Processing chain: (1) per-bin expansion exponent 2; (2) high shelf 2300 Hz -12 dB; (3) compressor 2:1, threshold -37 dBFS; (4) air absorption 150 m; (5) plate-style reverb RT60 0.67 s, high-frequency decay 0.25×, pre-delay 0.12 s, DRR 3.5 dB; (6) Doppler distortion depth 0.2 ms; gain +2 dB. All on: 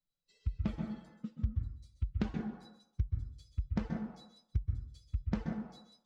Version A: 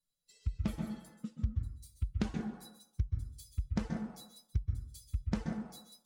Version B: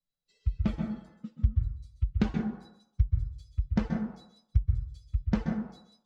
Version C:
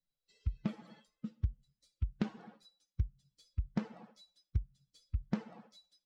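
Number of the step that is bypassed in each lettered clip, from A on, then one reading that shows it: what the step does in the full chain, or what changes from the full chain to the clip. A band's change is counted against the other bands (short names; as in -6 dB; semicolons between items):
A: 4, 4 kHz band +4.0 dB; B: 3, mean gain reduction 4.5 dB; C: 5, momentary loudness spread change +8 LU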